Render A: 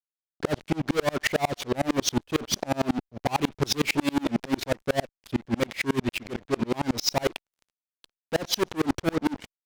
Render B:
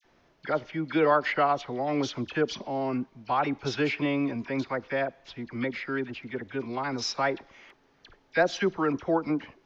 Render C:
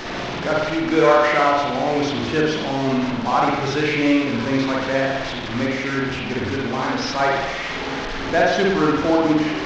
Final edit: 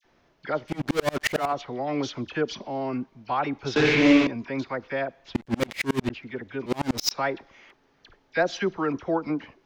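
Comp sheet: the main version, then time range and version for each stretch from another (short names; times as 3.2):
B
0.71–1.44 from A, crossfade 0.24 s
3.76–4.27 from C
5.35–6.1 from A
6.66–7.11 from A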